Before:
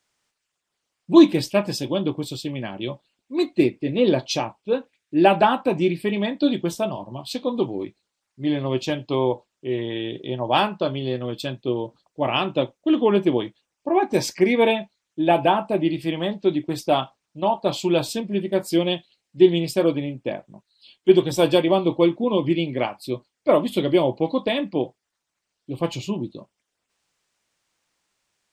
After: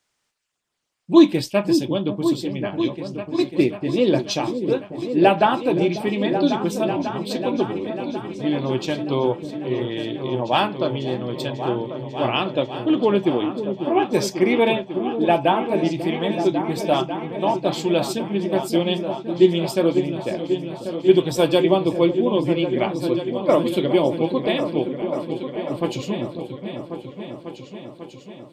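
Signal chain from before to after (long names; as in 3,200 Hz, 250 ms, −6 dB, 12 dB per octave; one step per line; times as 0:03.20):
echo whose low-pass opens from repeat to repeat 545 ms, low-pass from 400 Hz, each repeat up 2 octaves, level −6 dB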